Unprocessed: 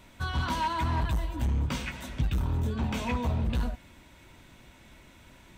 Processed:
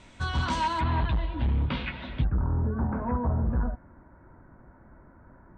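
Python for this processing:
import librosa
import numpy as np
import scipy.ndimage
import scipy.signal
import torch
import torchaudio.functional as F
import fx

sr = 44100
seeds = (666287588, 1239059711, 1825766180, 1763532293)

y = fx.steep_lowpass(x, sr, hz=fx.steps((0.0, 8900.0), (0.79, 4100.0), (2.23, 1600.0)), slope=48)
y = y * 10.0 ** (2.0 / 20.0)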